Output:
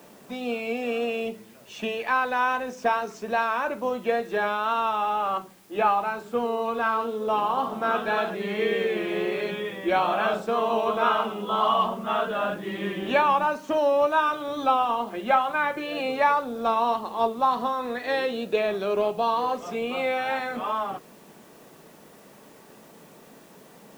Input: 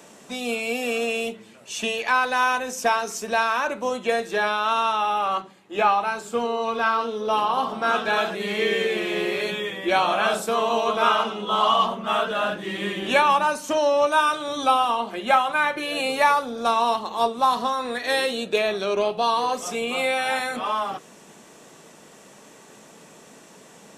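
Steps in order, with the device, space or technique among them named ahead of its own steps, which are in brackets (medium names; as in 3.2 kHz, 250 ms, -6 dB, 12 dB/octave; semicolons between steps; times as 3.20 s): cassette deck with a dirty head (tape spacing loss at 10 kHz 25 dB; wow and flutter 25 cents; white noise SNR 32 dB)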